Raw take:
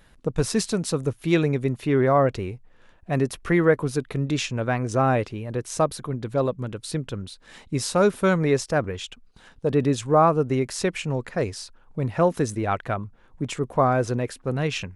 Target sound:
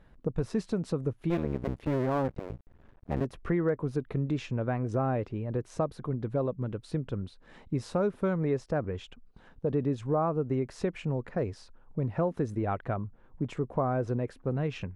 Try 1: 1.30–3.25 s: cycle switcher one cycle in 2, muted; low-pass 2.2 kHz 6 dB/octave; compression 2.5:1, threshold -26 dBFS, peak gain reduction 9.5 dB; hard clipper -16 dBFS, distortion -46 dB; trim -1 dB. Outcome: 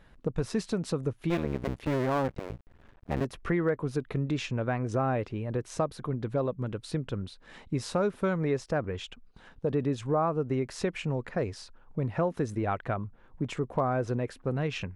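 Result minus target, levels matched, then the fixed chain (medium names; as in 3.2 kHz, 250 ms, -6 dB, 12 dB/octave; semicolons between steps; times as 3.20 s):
2 kHz band +4.5 dB
1.30–3.25 s: cycle switcher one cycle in 2, muted; low-pass 810 Hz 6 dB/octave; compression 2.5:1, threshold -26 dBFS, peak gain reduction 8.5 dB; hard clipper -16 dBFS, distortion -48 dB; trim -1 dB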